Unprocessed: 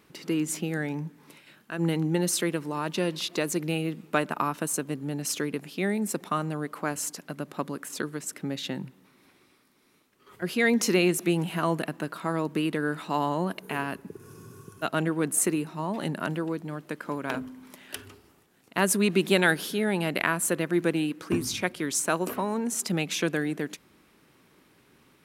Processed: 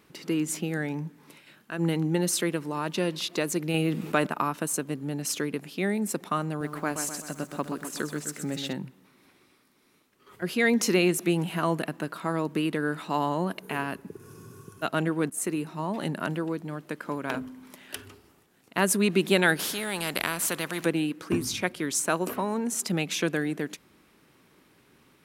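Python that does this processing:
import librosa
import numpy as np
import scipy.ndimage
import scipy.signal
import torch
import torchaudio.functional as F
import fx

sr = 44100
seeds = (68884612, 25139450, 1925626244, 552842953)

y = fx.env_flatten(x, sr, amount_pct=50, at=(3.74, 4.27))
y = fx.echo_crushed(y, sr, ms=127, feedback_pct=55, bits=9, wet_db=-7, at=(6.48, 8.73))
y = fx.spectral_comp(y, sr, ratio=2.0, at=(19.59, 20.86))
y = fx.edit(y, sr, fx.fade_in_from(start_s=15.3, length_s=0.48, curve='qsin', floor_db=-15.0), tone=tone)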